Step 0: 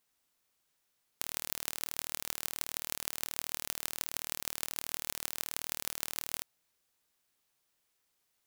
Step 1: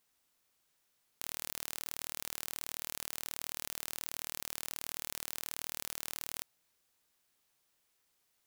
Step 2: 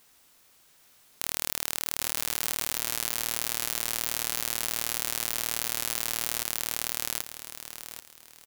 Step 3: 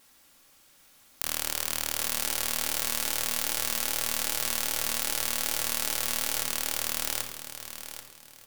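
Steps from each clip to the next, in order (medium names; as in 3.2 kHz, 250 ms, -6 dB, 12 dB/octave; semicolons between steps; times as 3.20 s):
level held to a coarse grid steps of 17 dB; trim +8 dB
feedback delay 785 ms, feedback 28%, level -6 dB; loudness maximiser +17.5 dB; trim -1 dB
vibrato 2.5 Hz 21 cents; simulated room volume 2500 m³, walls furnished, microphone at 2.3 m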